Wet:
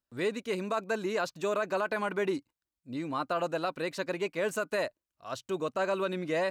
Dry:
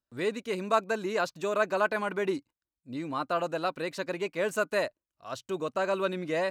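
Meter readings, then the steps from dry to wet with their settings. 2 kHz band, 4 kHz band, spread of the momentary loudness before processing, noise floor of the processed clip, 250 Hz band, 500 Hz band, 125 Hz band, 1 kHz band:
-2.5 dB, -1.0 dB, 9 LU, under -85 dBFS, -0.5 dB, -1.5 dB, -0.5 dB, -2.5 dB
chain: limiter -21 dBFS, peak gain reduction 8 dB

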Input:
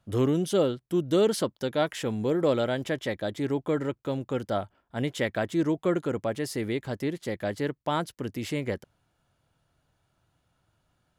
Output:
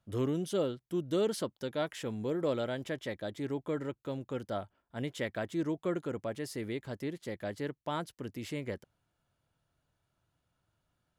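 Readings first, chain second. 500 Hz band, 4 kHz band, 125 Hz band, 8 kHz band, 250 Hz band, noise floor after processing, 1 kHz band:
-7.5 dB, -7.5 dB, -7.5 dB, -7.5 dB, -7.5 dB, -82 dBFS, -8.0 dB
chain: notch 780 Hz, Q 20; gain -7.5 dB

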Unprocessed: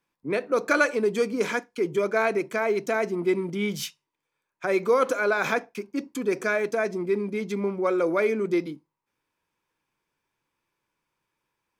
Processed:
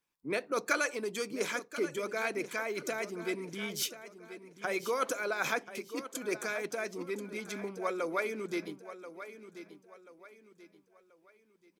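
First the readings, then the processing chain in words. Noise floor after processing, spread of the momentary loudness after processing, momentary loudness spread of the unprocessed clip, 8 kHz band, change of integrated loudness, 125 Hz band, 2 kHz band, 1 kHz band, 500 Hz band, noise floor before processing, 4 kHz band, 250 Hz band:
-69 dBFS, 15 LU, 7 LU, +0.5 dB, -9.5 dB, -12.0 dB, -7.0 dB, -8.0 dB, -11.0 dB, -83 dBFS, -2.0 dB, -11.0 dB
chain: high shelf 3300 Hz +8.5 dB; feedback echo 1.034 s, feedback 36%, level -13 dB; harmonic-percussive split harmonic -8 dB; gain -5.5 dB

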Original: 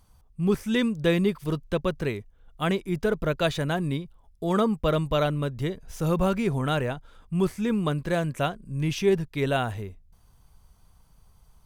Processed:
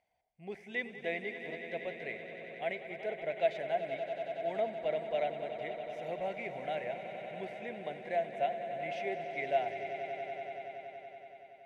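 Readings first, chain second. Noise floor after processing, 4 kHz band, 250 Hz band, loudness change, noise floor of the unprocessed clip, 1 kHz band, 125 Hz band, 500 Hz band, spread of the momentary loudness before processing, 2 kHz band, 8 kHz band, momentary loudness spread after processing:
-56 dBFS, -14.0 dB, -22.0 dB, -10.5 dB, -59 dBFS, -5.0 dB, -26.5 dB, -7.5 dB, 9 LU, -6.0 dB, under -20 dB, 11 LU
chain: vibrato 2.6 Hz 7.4 cents; double band-pass 1200 Hz, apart 1.6 oct; swelling echo 94 ms, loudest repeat 5, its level -12.5 dB

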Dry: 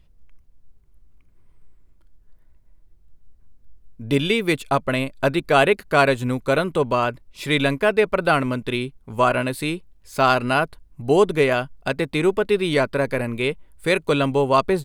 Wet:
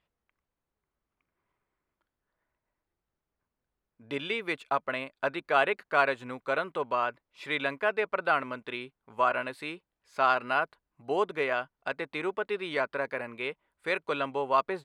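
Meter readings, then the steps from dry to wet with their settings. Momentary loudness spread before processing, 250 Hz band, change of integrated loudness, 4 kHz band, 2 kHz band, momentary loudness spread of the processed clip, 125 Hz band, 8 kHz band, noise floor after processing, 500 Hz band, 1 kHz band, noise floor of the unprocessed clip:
9 LU, -16.5 dB, -9.5 dB, -11.5 dB, -7.0 dB, 11 LU, -22.5 dB, under -15 dB, under -85 dBFS, -11.5 dB, -6.5 dB, -55 dBFS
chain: band-pass 1300 Hz, Q 0.77; gain -5.5 dB

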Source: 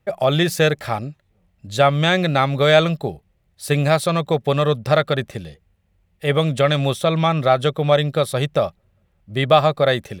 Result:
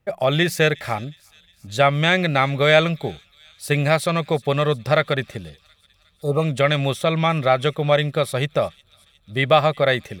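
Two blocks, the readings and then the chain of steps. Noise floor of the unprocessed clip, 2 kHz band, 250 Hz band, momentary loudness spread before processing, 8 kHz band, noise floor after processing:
-65 dBFS, +2.0 dB, -2.0 dB, 11 LU, -2.0 dB, -60 dBFS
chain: spectral repair 6.21–6.41, 1300–3600 Hz both; thin delay 0.361 s, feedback 61%, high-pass 3100 Hz, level -18.5 dB; dynamic EQ 2100 Hz, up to +7 dB, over -39 dBFS, Q 2.5; gain -2 dB

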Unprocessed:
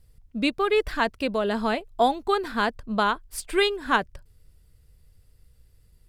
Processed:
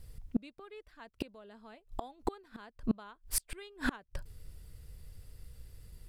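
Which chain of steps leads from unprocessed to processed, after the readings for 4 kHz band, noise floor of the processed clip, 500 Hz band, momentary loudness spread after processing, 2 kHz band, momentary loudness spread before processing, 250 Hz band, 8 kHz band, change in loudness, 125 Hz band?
-18.5 dB, -71 dBFS, -21.5 dB, 19 LU, -17.0 dB, 6 LU, -9.5 dB, 0.0 dB, -15.0 dB, -5.5 dB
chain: flipped gate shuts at -24 dBFS, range -34 dB; gain +6 dB

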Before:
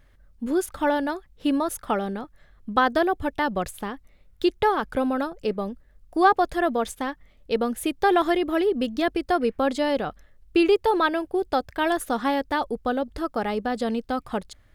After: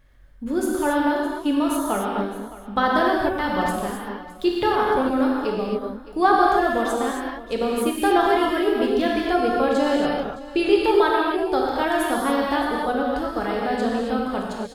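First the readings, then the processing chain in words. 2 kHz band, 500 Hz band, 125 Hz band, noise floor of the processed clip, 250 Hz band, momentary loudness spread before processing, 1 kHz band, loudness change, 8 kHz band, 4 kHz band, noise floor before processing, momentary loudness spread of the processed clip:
+3.0 dB, +3.0 dB, +3.0 dB, -40 dBFS, +3.0 dB, 12 LU, +3.0 dB, +3.0 dB, +3.0 dB, +3.0 dB, -57 dBFS, 9 LU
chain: on a send: echo 0.615 s -17 dB; on the sum: non-linear reverb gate 0.3 s flat, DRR -3.5 dB; gain -2 dB

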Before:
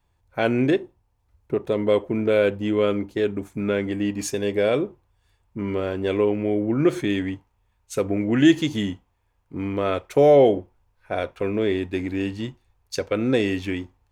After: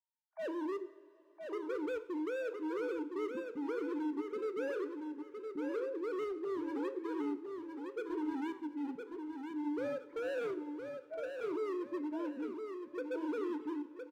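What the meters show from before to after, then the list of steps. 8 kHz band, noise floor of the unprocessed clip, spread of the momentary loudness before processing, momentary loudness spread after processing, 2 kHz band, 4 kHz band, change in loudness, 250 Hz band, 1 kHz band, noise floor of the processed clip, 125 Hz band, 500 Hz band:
under -25 dB, -69 dBFS, 14 LU, 6 LU, -16.0 dB, -24.0 dB, -16.5 dB, -15.0 dB, -14.5 dB, -60 dBFS, under -35 dB, -16.5 dB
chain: sine-wave speech; spectral noise reduction 10 dB; LPF 1100 Hz 12 dB/oct; low shelf 340 Hz +6 dB; notch 680 Hz, Q 13; compressor 3:1, threshold -23 dBFS, peak gain reduction 15.5 dB; hard clip -28 dBFS, distortion -8 dB; on a send: feedback echo 1.013 s, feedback 30%, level -6 dB; on the sum: two-slope reverb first 0.59 s, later 4.4 s, from -18 dB, DRR 10 dB; gain -8.5 dB

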